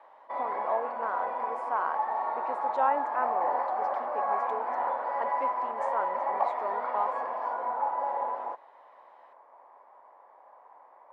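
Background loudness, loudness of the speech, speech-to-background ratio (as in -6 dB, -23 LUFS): -31.0 LUFS, -35.5 LUFS, -4.5 dB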